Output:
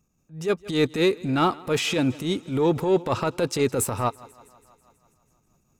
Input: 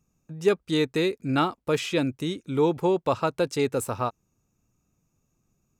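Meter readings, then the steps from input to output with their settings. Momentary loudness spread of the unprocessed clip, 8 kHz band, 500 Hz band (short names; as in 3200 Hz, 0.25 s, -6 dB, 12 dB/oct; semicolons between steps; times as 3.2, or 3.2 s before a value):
6 LU, +7.0 dB, +1.0 dB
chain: transient shaper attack -11 dB, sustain +2 dB; AGC gain up to 5 dB; thinning echo 0.163 s, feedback 67%, high-pass 150 Hz, level -23 dB; in parallel at -8 dB: soft clip -24.5 dBFS, distortion -8 dB; on the sum: tremolo 4.7 Hz, depth 35%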